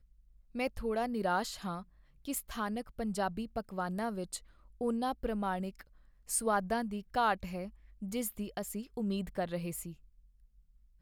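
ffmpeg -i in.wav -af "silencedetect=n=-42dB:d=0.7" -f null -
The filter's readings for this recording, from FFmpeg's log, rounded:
silence_start: 9.92
silence_end: 11.01 | silence_duration: 1.09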